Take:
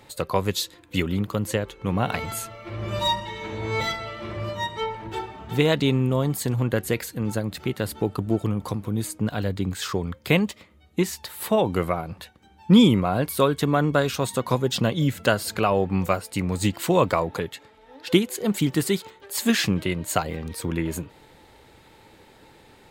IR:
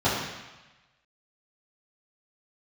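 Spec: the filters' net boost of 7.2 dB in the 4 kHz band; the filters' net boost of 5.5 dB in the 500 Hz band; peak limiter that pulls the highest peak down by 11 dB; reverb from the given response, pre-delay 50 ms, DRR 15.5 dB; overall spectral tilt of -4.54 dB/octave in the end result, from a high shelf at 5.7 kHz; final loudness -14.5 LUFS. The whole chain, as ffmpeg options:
-filter_complex "[0:a]equalizer=f=500:t=o:g=6.5,equalizer=f=4000:t=o:g=6,highshelf=f=5700:g=7.5,alimiter=limit=0.316:level=0:latency=1,asplit=2[s0][s1];[1:a]atrim=start_sample=2205,adelay=50[s2];[s1][s2]afir=irnorm=-1:irlink=0,volume=0.0266[s3];[s0][s3]amix=inputs=2:normalize=0,volume=2.66"

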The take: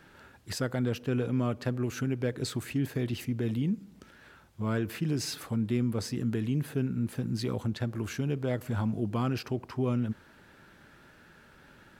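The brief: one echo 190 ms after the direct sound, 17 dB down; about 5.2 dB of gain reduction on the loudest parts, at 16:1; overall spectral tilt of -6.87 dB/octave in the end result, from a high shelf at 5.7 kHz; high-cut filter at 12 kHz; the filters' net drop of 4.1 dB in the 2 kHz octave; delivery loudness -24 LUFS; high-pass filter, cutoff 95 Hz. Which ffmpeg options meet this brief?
-af "highpass=95,lowpass=12000,equalizer=f=2000:t=o:g=-5,highshelf=f=5700:g=-5.5,acompressor=threshold=0.0316:ratio=16,aecho=1:1:190:0.141,volume=4.22"

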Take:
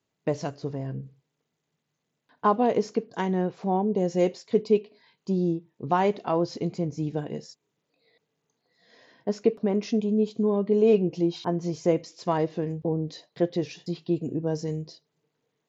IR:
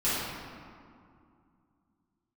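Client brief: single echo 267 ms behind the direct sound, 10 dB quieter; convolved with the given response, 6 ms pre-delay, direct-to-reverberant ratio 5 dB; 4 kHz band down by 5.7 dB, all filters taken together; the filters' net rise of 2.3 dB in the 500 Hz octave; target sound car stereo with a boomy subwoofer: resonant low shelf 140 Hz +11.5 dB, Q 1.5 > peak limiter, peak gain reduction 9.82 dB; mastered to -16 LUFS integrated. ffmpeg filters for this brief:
-filter_complex "[0:a]equalizer=f=500:t=o:g=4,equalizer=f=4000:t=o:g=-8,aecho=1:1:267:0.316,asplit=2[s0][s1];[1:a]atrim=start_sample=2205,adelay=6[s2];[s1][s2]afir=irnorm=-1:irlink=0,volume=0.15[s3];[s0][s3]amix=inputs=2:normalize=0,lowshelf=f=140:t=q:w=1.5:g=11.5,volume=3.16,alimiter=limit=0.562:level=0:latency=1"

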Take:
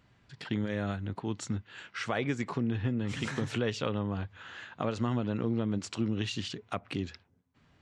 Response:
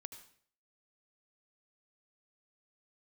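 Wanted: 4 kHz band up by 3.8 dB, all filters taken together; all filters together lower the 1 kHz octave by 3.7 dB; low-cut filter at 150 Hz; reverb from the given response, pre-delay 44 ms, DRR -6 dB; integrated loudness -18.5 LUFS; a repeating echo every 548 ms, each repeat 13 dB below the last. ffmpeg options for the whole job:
-filter_complex "[0:a]highpass=150,equalizer=f=1000:t=o:g=-5.5,equalizer=f=4000:t=o:g=5.5,aecho=1:1:548|1096|1644:0.224|0.0493|0.0108,asplit=2[s0][s1];[1:a]atrim=start_sample=2205,adelay=44[s2];[s1][s2]afir=irnorm=-1:irlink=0,volume=3.55[s3];[s0][s3]amix=inputs=2:normalize=0,volume=2.82"

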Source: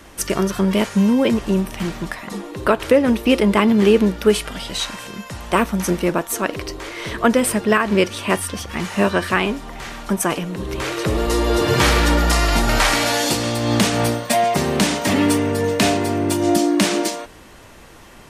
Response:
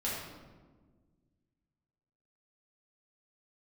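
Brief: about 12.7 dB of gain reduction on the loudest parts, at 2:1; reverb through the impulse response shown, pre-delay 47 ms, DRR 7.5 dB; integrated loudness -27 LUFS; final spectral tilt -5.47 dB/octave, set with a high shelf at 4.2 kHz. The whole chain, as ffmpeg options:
-filter_complex "[0:a]highshelf=f=4200:g=-9,acompressor=threshold=0.0224:ratio=2,asplit=2[s0][s1];[1:a]atrim=start_sample=2205,adelay=47[s2];[s1][s2]afir=irnorm=-1:irlink=0,volume=0.237[s3];[s0][s3]amix=inputs=2:normalize=0,volume=1.12"

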